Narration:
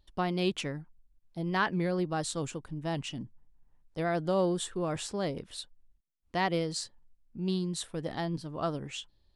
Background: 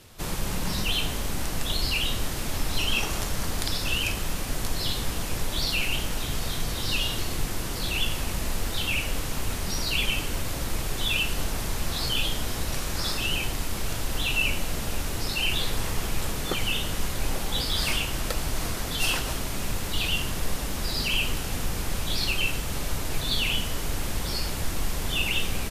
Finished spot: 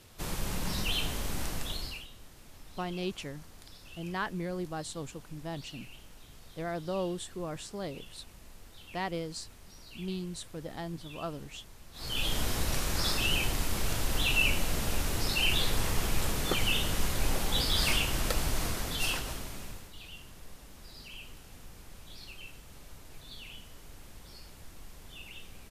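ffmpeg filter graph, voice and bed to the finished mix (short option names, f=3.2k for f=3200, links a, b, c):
-filter_complex "[0:a]adelay=2600,volume=-5.5dB[a];[1:a]volume=17dB,afade=t=out:st=1.46:d=0.61:silence=0.11885,afade=t=in:st=11.93:d=0.46:silence=0.0794328,afade=t=out:st=18.4:d=1.52:silence=0.105925[b];[a][b]amix=inputs=2:normalize=0"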